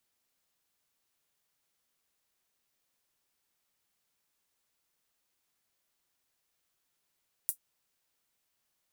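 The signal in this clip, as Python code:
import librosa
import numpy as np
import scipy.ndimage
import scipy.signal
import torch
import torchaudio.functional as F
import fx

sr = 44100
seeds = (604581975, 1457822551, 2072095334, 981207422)

y = fx.drum_hat(sr, length_s=0.24, from_hz=9600.0, decay_s=0.1)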